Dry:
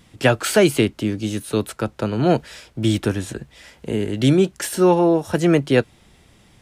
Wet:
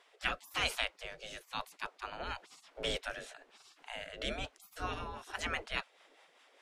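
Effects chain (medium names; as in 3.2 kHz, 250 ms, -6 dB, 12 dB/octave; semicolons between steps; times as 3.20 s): rotary cabinet horn 1 Hz, later 5 Hz, at 4.34 s; RIAA curve playback; spectral gate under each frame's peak -30 dB weak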